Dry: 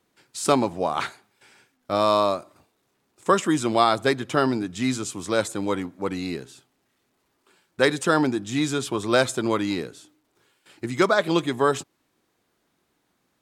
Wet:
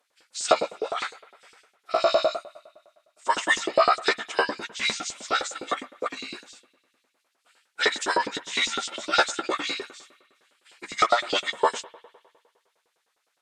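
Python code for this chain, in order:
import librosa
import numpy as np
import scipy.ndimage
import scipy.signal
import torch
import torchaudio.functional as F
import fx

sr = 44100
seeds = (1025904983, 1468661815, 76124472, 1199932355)

y = fx.pitch_keep_formants(x, sr, semitones=-10.0)
y = fx.rev_spring(y, sr, rt60_s=1.8, pass_ms=(58,), chirp_ms=50, drr_db=18.0)
y = fx.filter_lfo_highpass(y, sr, shape='saw_up', hz=9.8, low_hz=380.0, high_hz=5000.0, q=1.2)
y = y * librosa.db_to_amplitude(1.0)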